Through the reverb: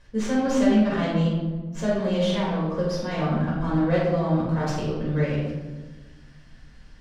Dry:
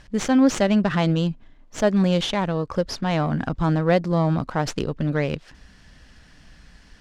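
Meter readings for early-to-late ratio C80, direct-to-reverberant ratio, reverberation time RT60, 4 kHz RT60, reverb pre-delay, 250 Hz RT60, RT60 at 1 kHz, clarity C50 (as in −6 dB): 3.0 dB, −8.0 dB, 1.3 s, 0.75 s, 4 ms, 1.8 s, 1.1 s, −0.5 dB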